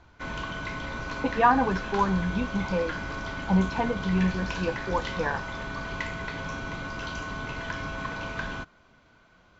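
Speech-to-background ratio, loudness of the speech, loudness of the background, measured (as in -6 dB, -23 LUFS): 6.5 dB, -27.5 LUFS, -34.0 LUFS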